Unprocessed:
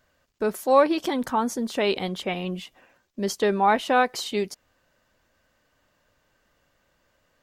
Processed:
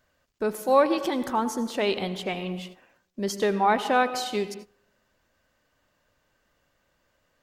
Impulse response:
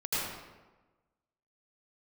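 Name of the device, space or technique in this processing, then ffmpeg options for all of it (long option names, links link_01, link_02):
keyed gated reverb: -filter_complex "[0:a]asplit=3[link_01][link_02][link_03];[1:a]atrim=start_sample=2205[link_04];[link_02][link_04]afir=irnorm=-1:irlink=0[link_05];[link_03]apad=whole_len=327467[link_06];[link_05][link_06]sidechaingate=range=-21dB:threshold=-47dB:ratio=16:detection=peak,volume=-18.5dB[link_07];[link_01][link_07]amix=inputs=2:normalize=0,volume=-2.5dB"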